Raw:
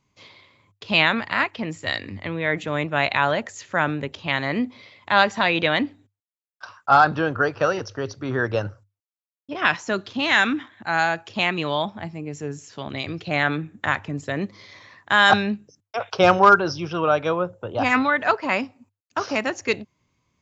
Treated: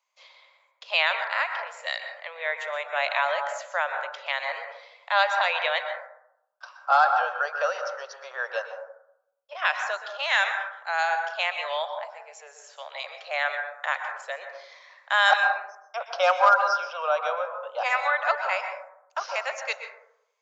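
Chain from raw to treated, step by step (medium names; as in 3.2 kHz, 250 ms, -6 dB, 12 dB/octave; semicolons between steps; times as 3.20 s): steep high-pass 520 Hz 72 dB/octave; plate-style reverb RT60 0.79 s, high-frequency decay 0.25×, pre-delay 110 ms, DRR 5.5 dB; trim -4.5 dB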